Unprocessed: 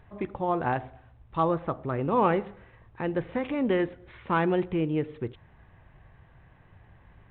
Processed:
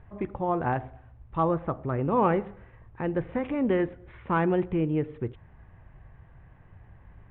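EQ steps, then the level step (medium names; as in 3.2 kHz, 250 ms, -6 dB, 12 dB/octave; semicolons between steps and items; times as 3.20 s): low-pass 2.8 kHz 12 dB/octave; distance through air 120 m; bass shelf 120 Hz +6 dB; 0.0 dB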